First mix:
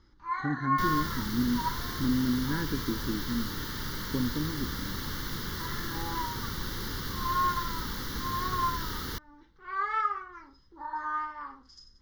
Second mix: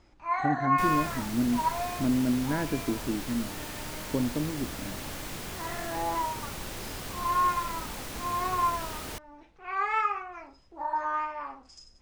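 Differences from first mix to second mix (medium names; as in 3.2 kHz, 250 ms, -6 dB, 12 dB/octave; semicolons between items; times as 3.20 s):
second sound -5.0 dB; master: remove static phaser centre 2.5 kHz, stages 6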